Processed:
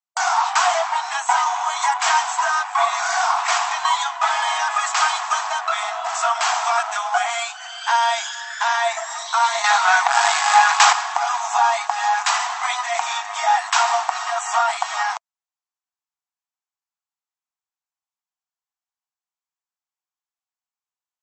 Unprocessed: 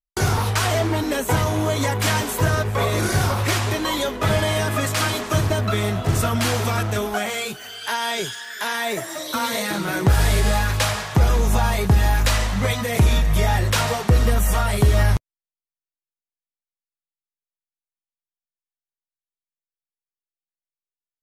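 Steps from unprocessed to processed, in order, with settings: ten-band graphic EQ 1 kHz +5 dB, 2 kHz -4 dB, 4 kHz -5 dB; 9.64–10.93 s: waveshaping leveller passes 2; brick-wall FIR band-pass 660–8100 Hz; trim +5.5 dB

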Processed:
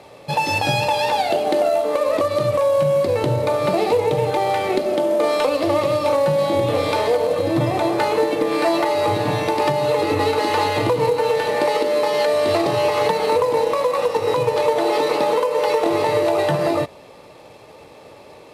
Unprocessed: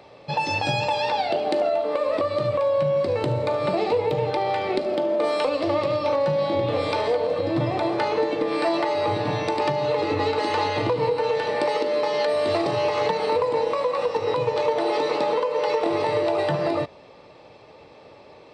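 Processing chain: CVSD coder 64 kbps; trim +4.5 dB

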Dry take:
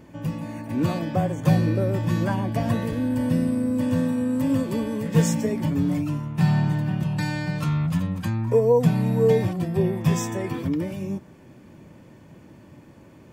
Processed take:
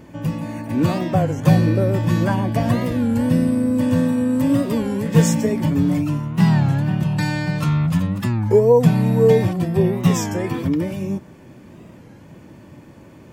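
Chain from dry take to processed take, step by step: warped record 33 1/3 rpm, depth 160 cents; trim +5 dB

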